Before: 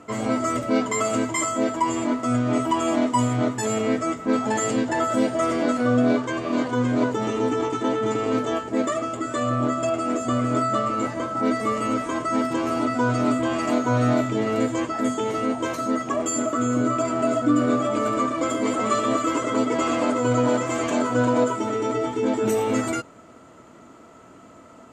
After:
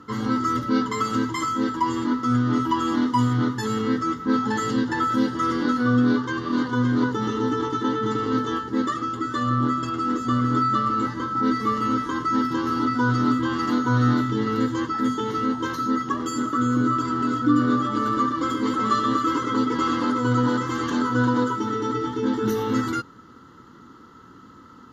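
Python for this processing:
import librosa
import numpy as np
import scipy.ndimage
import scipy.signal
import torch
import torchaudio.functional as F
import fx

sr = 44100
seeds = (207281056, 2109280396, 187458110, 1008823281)

y = fx.fixed_phaser(x, sr, hz=2400.0, stages=6)
y = F.gain(torch.from_numpy(y), 3.0).numpy()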